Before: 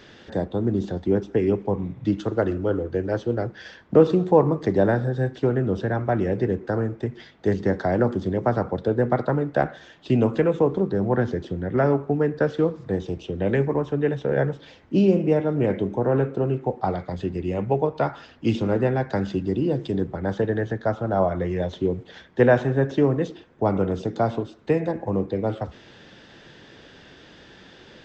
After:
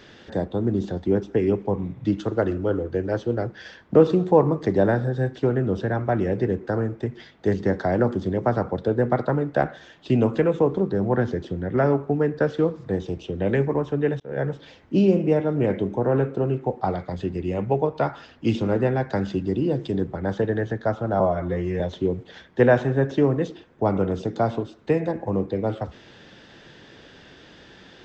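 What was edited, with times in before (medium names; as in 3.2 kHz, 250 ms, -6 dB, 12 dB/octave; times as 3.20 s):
14.20–14.52 s: fade in
21.20–21.60 s: stretch 1.5×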